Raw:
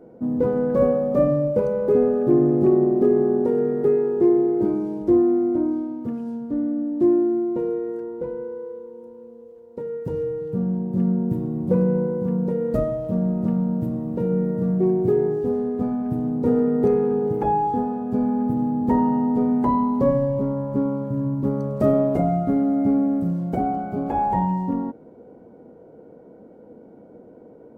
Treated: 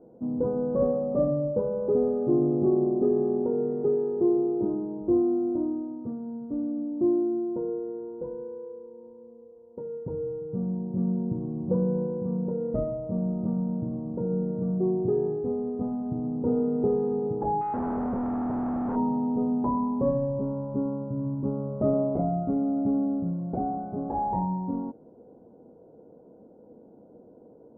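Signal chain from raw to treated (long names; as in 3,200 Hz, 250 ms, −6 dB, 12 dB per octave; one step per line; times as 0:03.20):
0:17.61–0:18.96: sign of each sample alone
low-pass filter 1,100 Hz 24 dB per octave
level −6 dB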